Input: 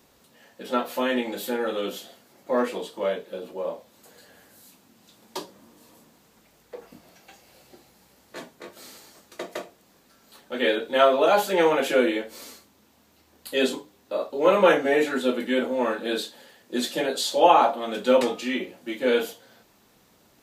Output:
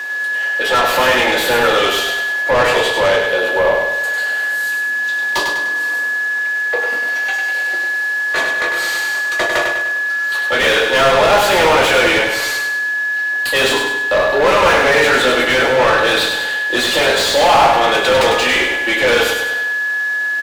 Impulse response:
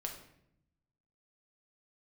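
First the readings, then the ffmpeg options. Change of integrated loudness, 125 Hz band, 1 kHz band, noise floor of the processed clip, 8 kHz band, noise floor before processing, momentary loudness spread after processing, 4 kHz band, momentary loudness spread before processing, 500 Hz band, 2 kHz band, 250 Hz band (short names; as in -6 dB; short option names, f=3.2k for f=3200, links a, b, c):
+10.0 dB, +15.5 dB, +10.5 dB, -19 dBFS, +15.0 dB, -60 dBFS, 6 LU, +16.0 dB, 20 LU, +8.5 dB, +21.0 dB, +3.5 dB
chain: -filter_complex "[0:a]highpass=350,aeval=exprs='val(0)+0.00398*sin(2*PI*1700*n/s)':c=same,tiltshelf=f=970:g=-3.5,asplit=2[a][b];[b]highpass=f=720:p=1,volume=34dB,asoftclip=type=tanh:threshold=-4dB[c];[a][c]amix=inputs=2:normalize=0,lowpass=f=2.3k:p=1,volume=-6dB,asplit=2[d][e];[e]aecho=0:1:100|200|300|400|500|600:0.562|0.276|0.135|0.0662|0.0324|0.0159[f];[d][f]amix=inputs=2:normalize=0,volume=-1dB"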